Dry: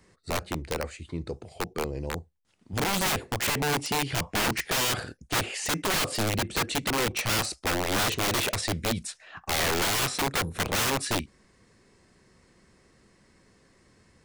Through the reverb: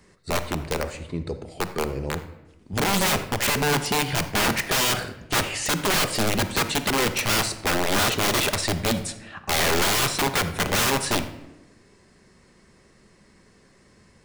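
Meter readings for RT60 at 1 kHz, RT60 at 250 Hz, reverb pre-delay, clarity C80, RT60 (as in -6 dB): 0.90 s, 1.3 s, 5 ms, 13.5 dB, 1.0 s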